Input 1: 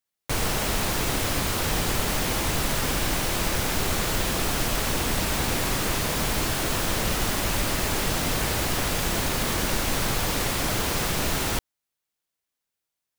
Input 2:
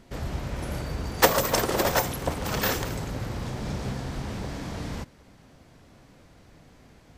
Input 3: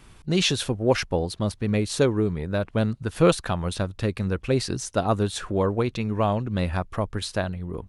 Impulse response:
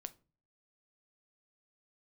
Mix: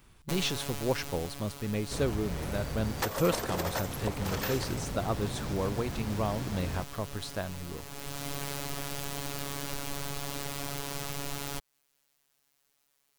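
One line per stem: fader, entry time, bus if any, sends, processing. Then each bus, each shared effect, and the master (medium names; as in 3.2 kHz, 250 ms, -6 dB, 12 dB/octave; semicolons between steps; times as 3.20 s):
0.0 dB, 0.00 s, bus A, no send, peaking EQ 1.8 kHz -3 dB; word length cut 12-bit, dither triangular; robot voice 141 Hz; auto duck -17 dB, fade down 1.45 s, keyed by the third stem
-3.5 dB, 1.80 s, bus A, no send, none
-9.0 dB, 0.00 s, no bus, no send, none
bus A: 0.0 dB, compression 5:1, threshold -30 dBFS, peak gain reduction 13.5 dB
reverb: none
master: none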